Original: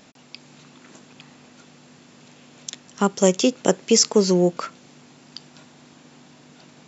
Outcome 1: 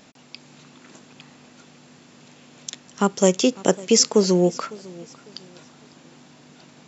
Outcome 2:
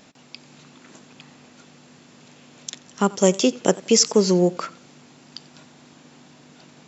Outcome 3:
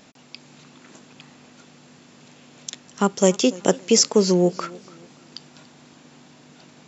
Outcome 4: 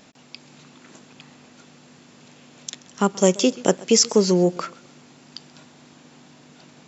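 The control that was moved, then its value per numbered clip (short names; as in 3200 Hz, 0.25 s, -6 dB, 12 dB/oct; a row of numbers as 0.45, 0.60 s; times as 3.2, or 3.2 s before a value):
warbling echo, time: 552, 89, 289, 131 ms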